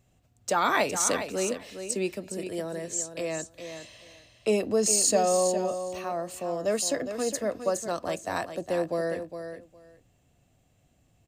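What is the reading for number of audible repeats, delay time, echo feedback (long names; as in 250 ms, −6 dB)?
2, 410 ms, 16%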